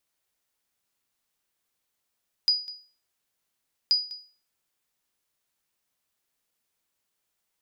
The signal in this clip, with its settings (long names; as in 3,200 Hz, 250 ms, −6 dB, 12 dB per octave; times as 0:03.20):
ping with an echo 4,920 Hz, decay 0.39 s, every 1.43 s, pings 2, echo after 0.20 s, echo −19 dB −14.5 dBFS